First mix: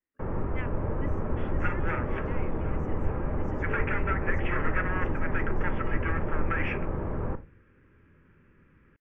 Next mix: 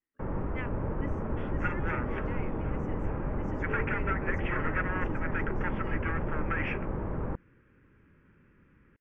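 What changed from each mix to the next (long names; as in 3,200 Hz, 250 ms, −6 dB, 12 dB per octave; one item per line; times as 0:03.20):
reverb: off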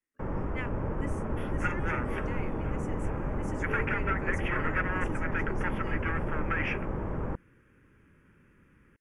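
master: remove high-frequency loss of the air 210 metres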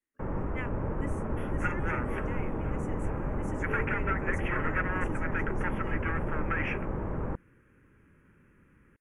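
master: add parametric band 4,300 Hz −15 dB 0.53 octaves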